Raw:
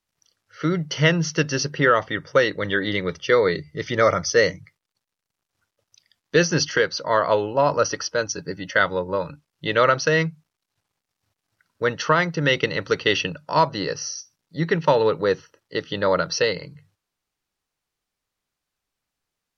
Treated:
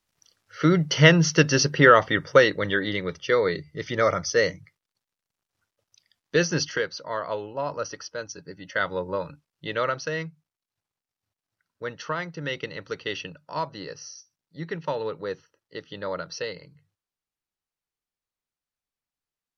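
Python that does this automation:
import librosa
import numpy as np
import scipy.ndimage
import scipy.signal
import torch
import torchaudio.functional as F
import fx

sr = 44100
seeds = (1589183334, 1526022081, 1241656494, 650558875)

y = fx.gain(x, sr, db=fx.line((2.26, 3.0), (2.97, -4.0), (6.54, -4.0), (7.15, -10.5), (8.55, -10.5), (9.04, -3.5), (10.25, -11.0)))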